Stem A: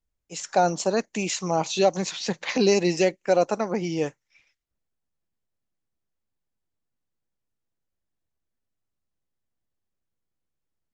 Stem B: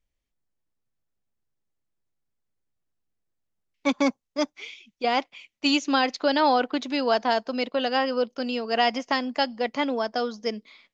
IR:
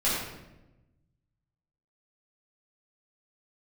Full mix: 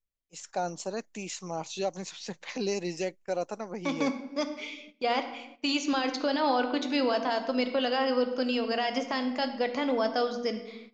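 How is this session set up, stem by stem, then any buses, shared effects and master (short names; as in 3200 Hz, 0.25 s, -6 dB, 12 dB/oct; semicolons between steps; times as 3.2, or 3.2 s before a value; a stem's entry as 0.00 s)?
-11.0 dB, 0.00 s, no send, high shelf 6900 Hz +3.5 dB
-2.0 dB, 0.00 s, send -17 dB, limiter -17.5 dBFS, peak gain reduction 8.5 dB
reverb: on, RT60 1.0 s, pre-delay 6 ms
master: gate -49 dBFS, range -13 dB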